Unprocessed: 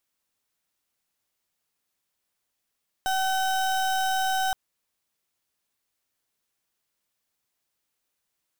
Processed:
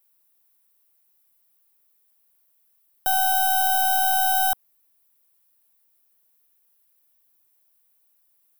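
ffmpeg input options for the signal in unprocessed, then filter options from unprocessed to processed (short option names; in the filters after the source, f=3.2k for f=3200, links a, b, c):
-f lavfi -i "aevalsrc='0.0562*(2*lt(mod(761*t,1),0.33)-1)':d=1.47:s=44100"
-filter_complex "[0:a]acrossover=split=420|800|6400[a][b][c][d];[b]acontrast=39[e];[a][e][c][d]amix=inputs=4:normalize=0,aexciter=amount=7:drive=2.3:freq=9.5k"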